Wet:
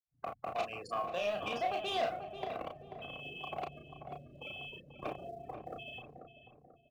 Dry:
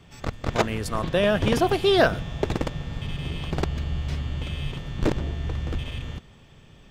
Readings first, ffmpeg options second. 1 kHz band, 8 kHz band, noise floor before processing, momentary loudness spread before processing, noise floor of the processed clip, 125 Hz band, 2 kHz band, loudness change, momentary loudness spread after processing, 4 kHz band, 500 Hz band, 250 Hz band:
−7.5 dB, −18.5 dB, −51 dBFS, 12 LU, −69 dBFS, −26.0 dB, −13.5 dB, −13.5 dB, 14 LU, −12.5 dB, −14.0 dB, −22.0 dB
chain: -filter_complex "[0:a]afftfilt=real='re*gte(hypot(re,im),0.0316)':imag='im*gte(hypot(re,im),0.0316)':win_size=1024:overlap=0.75,lowshelf=frequency=370:gain=-7.5,acrossover=split=240|3000[link_01][link_02][link_03];[link_02]acompressor=threshold=-38dB:ratio=3[link_04];[link_01][link_04][link_03]amix=inputs=3:normalize=0,asplit=3[link_05][link_06][link_07];[link_05]bandpass=frequency=730:width_type=q:width=8,volume=0dB[link_08];[link_06]bandpass=frequency=1090:width_type=q:width=8,volume=-6dB[link_09];[link_07]bandpass=frequency=2440:width_type=q:width=8,volume=-9dB[link_10];[link_08][link_09][link_10]amix=inputs=3:normalize=0,asplit=2[link_11][link_12];[link_12]acrusher=bits=4:mode=log:mix=0:aa=0.000001,volume=-11dB[link_13];[link_11][link_13]amix=inputs=2:normalize=0,asoftclip=type=tanh:threshold=-38dB,asplit=2[link_14][link_15];[link_15]adelay=34,volume=-4.5dB[link_16];[link_14][link_16]amix=inputs=2:normalize=0,asplit=2[link_17][link_18];[link_18]adelay=488,lowpass=frequency=1400:poles=1,volume=-7.5dB,asplit=2[link_19][link_20];[link_20]adelay=488,lowpass=frequency=1400:poles=1,volume=0.42,asplit=2[link_21][link_22];[link_22]adelay=488,lowpass=frequency=1400:poles=1,volume=0.42,asplit=2[link_23][link_24];[link_24]adelay=488,lowpass=frequency=1400:poles=1,volume=0.42,asplit=2[link_25][link_26];[link_26]adelay=488,lowpass=frequency=1400:poles=1,volume=0.42[link_27];[link_19][link_21][link_23][link_25][link_27]amix=inputs=5:normalize=0[link_28];[link_17][link_28]amix=inputs=2:normalize=0,volume=8dB"

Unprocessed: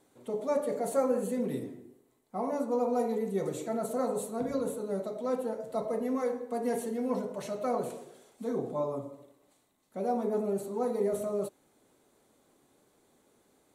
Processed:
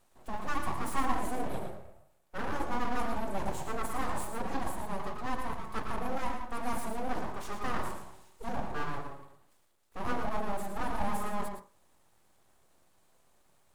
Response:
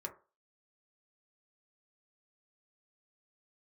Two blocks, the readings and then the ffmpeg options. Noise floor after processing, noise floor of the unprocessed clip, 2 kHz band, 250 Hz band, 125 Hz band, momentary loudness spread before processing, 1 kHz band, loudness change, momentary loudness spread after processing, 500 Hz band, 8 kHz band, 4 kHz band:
−66 dBFS, −69 dBFS, +10.0 dB, −5.5 dB, +1.5 dB, 9 LU, +3.5 dB, −4.0 dB, 9 LU, −10.5 dB, −1.0 dB, +6.5 dB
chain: -filter_complex "[0:a]aeval=exprs='abs(val(0))':channel_layout=same,asplit=2[link_01][link_02];[1:a]atrim=start_sample=2205,adelay=111[link_03];[link_02][link_03]afir=irnorm=-1:irlink=0,volume=-4.5dB[link_04];[link_01][link_04]amix=inputs=2:normalize=0"

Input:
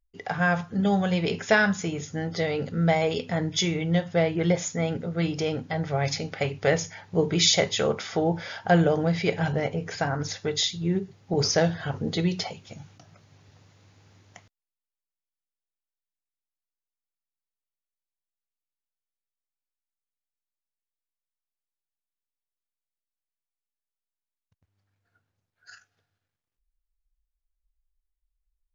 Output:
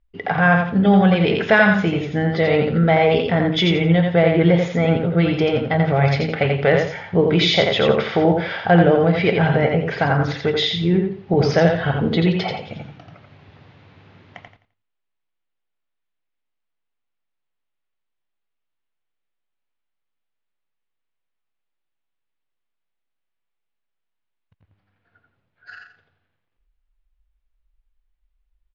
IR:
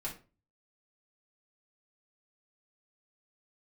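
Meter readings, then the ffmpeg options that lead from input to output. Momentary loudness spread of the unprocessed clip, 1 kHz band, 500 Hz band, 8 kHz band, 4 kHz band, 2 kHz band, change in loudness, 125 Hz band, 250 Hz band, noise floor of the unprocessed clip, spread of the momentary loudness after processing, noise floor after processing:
9 LU, +9.0 dB, +9.0 dB, can't be measured, +5.0 dB, +8.5 dB, +8.0 dB, +9.0 dB, +9.0 dB, below −85 dBFS, 7 LU, −77 dBFS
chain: -filter_complex "[0:a]lowpass=frequency=3400:width=0.5412,lowpass=frequency=3400:width=1.3066,asplit=2[link_01][link_02];[link_02]alimiter=limit=-19dB:level=0:latency=1:release=104,volume=3dB[link_03];[link_01][link_03]amix=inputs=2:normalize=0,aecho=1:1:86|172|258|344:0.631|0.164|0.0427|0.0111,volume=2dB"

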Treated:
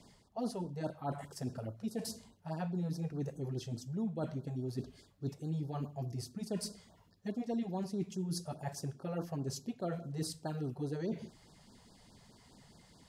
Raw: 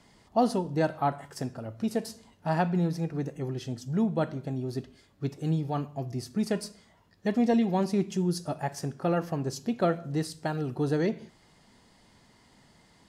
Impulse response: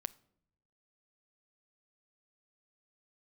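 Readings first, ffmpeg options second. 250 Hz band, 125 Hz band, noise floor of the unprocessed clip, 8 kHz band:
−10.0 dB, −7.0 dB, −61 dBFS, −3.5 dB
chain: -af "areverse,acompressor=threshold=-36dB:ratio=4,areverse,equalizer=frequency=1700:width_type=o:width=2.1:gain=-5,afftfilt=real='re*(1-between(b*sr/1024,250*pow(2600/250,0.5+0.5*sin(2*PI*4.8*pts/sr))/1.41,250*pow(2600/250,0.5+0.5*sin(2*PI*4.8*pts/sr))*1.41))':imag='im*(1-between(b*sr/1024,250*pow(2600/250,0.5+0.5*sin(2*PI*4.8*pts/sr))/1.41,250*pow(2600/250,0.5+0.5*sin(2*PI*4.8*pts/sr))*1.41))':win_size=1024:overlap=0.75,volume=1dB"

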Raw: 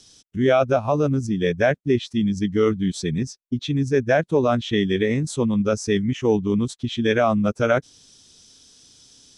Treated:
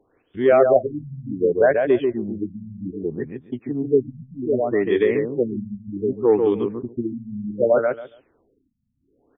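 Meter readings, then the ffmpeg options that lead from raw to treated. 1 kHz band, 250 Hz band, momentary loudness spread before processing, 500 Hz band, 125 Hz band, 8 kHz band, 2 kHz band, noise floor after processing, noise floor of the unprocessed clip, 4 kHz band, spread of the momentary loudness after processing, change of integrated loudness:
−2.0 dB, −3.5 dB, 6 LU, +2.5 dB, −9.5 dB, below −40 dB, −4.5 dB, −68 dBFS, −58 dBFS, below −10 dB, 15 LU, 0.0 dB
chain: -filter_complex "[0:a]acontrast=34,lowshelf=frequency=260:width_type=q:width=1.5:gain=-10.5,asplit=2[link_01][link_02];[link_02]adelay=140,lowpass=frequency=1600:poles=1,volume=-4dB,asplit=2[link_03][link_04];[link_04]adelay=140,lowpass=frequency=1600:poles=1,volume=0.2,asplit=2[link_05][link_06];[link_06]adelay=140,lowpass=frequency=1600:poles=1,volume=0.2[link_07];[link_03][link_05][link_07]amix=inputs=3:normalize=0[link_08];[link_01][link_08]amix=inputs=2:normalize=0,acrossover=split=2500[link_09][link_10];[link_10]acompressor=threshold=-40dB:ratio=4:attack=1:release=60[link_11];[link_09][link_11]amix=inputs=2:normalize=0,afftfilt=real='re*lt(b*sr/1024,220*pow(3700/220,0.5+0.5*sin(2*PI*0.65*pts/sr)))':imag='im*lt(b*sr/1024,220*pow(3700/220,0.5+0.5*sin(2*PI*0.65*pts/sr)))':win_size=1024:overlap=0.75,volume=-3.5dB"

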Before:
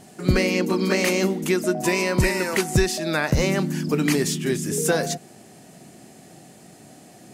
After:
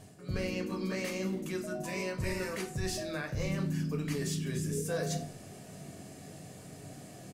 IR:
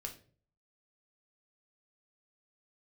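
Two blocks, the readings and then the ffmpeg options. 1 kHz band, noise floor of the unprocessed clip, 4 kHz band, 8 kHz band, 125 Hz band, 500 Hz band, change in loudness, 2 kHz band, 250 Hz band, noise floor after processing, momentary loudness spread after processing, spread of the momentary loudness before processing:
−14.5 dB, −48 dBFS, −13.5 dB, −13.5 dB, −9.5 dB, −13.5 dB, −13.0 dB, −15.0 dB, −12.5 dB, −50 dBFS, 15 LU, 4 LU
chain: -filter_complex "[0:a]equalizer=frequency=79:width_type=o:width=1.3:gain=6,areverse,acompressor=threshold=-31dB:ratio=6,areverse,asplit=4[link_01][link_02][link_03][link_04];[link_02]adelay=86,afreqshift=-57,volume=-22.5dB[link_05];[link_03]adelay=172,afreqshift=-114,volume=-28.7dB[link_06];[link_04]adelay=258,afreqshift=-171,volume=-34.9dB[link_07];[link_01][link_05][link_06][link_07]amix=inputs=4:normalize=0[link_08];[1:a]atrim=start_sample=2205[link_09];[link_08][link_09]afir=irnorm=-1:irlink=0"

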